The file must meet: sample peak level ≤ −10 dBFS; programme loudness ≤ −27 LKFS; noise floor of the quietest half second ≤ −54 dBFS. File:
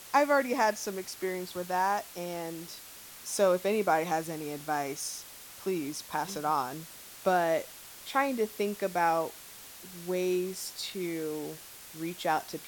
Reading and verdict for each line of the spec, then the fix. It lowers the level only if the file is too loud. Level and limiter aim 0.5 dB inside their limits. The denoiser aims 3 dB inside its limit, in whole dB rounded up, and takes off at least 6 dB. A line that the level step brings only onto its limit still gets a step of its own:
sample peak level −12.5 dBFS: in spec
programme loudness −31.0 LKFS: in spec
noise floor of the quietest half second −48 dBFS: out of spec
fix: broadband denoise 9 dB, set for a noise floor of −48 dBFS

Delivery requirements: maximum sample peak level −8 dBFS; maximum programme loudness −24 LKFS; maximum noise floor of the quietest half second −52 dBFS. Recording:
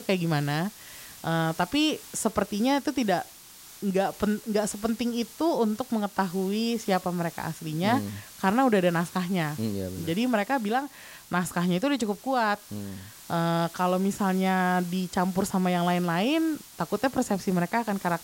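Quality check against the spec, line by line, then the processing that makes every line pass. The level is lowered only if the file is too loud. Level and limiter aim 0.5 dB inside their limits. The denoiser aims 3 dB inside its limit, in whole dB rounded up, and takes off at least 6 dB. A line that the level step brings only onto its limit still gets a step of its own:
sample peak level −9.5 dBFS: in spec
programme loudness −27.0 LKFS: in spec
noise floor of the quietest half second −48 dBFS: out of spec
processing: broadband denoise 7 dB, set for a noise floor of −48 dBFS

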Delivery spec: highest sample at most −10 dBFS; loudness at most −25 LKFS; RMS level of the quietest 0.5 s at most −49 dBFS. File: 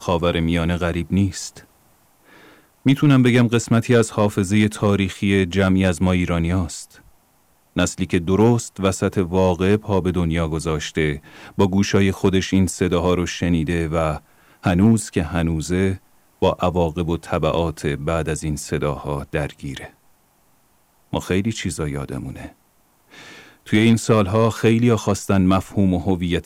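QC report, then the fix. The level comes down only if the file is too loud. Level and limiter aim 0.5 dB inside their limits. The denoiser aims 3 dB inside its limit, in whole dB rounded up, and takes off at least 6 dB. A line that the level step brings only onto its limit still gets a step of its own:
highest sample −5.5 dBFS: out of spec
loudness −19.5 LKFS: out of spec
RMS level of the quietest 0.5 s −59 dBFS: in spec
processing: level −6 dB

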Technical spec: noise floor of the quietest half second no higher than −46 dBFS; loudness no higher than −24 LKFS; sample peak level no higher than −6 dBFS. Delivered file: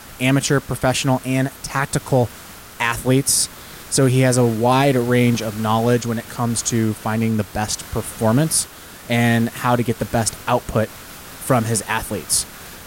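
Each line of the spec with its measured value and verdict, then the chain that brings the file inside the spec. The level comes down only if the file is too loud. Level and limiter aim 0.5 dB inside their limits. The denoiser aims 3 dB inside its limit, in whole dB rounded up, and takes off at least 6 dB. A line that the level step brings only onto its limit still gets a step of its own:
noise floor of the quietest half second −39 dBFS: out of spec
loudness −19.0 LKFS: out of spec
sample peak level −5.0 dBFS: out of spec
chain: broadband denoise 6 dB, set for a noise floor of −39 dBFS
level −5.5 dB

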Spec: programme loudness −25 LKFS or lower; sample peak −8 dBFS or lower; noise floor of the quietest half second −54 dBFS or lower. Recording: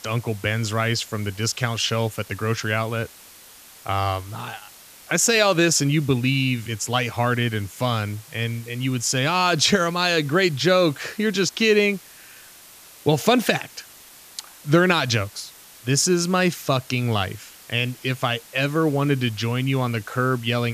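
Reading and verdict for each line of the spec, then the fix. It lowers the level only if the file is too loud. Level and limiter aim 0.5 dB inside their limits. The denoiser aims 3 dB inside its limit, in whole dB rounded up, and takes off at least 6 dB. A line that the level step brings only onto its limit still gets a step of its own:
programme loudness −22.0 LKFS: out of spec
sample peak −4.5 dBFS: out of spec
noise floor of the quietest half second −46 dBFS: out of spec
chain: broadband denoise 8 dB, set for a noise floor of −46 dBFS
level −3.5 dB
brickwall limiter −8.5 dBFS

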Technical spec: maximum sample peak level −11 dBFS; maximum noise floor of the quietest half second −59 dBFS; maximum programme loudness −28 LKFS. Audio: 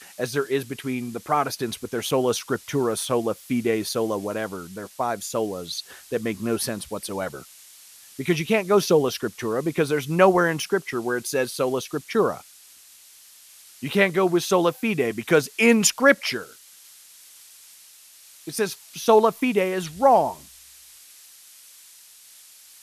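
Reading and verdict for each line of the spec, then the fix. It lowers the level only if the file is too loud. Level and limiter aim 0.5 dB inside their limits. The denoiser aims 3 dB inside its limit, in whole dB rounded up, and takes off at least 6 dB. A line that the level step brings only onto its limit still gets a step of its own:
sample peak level −3.0 dBFS: out of spec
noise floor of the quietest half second −50 dBFS: out of spec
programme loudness −23.0 LKFS: out of spec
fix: broadband denoise 7 dB, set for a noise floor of −50 dBFS
level −5.5 dB
brickwall limiter −11.5 dBFS

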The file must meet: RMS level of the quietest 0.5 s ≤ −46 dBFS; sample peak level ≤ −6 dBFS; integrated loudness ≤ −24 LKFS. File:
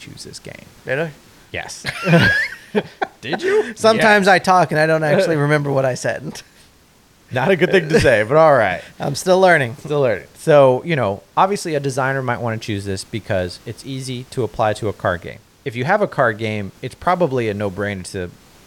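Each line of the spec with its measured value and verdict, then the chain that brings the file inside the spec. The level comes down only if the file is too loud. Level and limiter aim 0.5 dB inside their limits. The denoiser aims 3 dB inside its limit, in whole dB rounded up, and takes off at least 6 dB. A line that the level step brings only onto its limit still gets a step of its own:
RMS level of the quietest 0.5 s −51 dBFS: in spec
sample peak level −1.5 dBFS: out of spec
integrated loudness −17.0 LKFS: out of spec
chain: level −7.5 dB

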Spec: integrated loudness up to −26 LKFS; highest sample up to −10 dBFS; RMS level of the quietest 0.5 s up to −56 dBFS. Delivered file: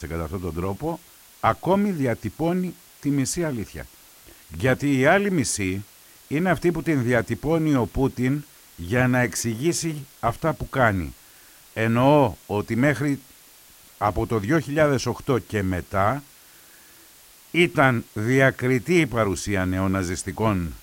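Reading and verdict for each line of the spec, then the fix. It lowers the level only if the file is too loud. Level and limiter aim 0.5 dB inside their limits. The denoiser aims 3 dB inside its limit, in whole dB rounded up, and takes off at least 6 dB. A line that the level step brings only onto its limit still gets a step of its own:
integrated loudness −23.0 LKFS: out of spec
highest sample −5.0 dBFS: out of spec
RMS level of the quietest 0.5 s −50 dBFS: out of spec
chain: broadband denoise 6 dB, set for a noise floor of −50 dBFS
level −3.5 dB
brickwall limiter −10.5 dBFS

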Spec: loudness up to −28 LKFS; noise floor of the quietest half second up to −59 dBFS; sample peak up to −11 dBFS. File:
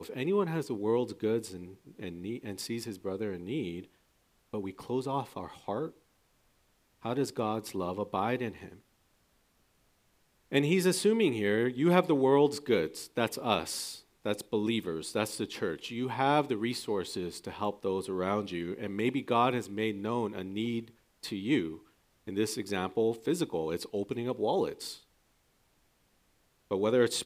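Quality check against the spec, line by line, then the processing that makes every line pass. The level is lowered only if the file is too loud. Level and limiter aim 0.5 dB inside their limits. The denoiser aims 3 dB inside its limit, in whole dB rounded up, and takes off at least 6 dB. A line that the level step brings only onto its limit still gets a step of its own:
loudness −32.0 LKFS: in spec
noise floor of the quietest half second −70 dBFS: in spec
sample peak −8.5 dBFS: out of spec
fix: brickwall limiter −11.5 dBFS

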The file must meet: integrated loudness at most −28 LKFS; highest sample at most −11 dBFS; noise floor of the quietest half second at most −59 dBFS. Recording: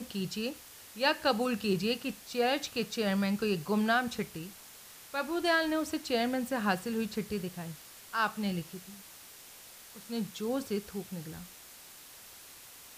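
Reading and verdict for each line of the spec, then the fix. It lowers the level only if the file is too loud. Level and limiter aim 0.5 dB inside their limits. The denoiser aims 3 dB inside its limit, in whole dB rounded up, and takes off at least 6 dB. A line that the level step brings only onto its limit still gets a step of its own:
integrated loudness −32.5 LKFS: in spec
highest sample −14.5 dBFS: in spec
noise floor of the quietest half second −52 dBFS: out of spec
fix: broadband denoise 10 dB, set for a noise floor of −52 dBFS

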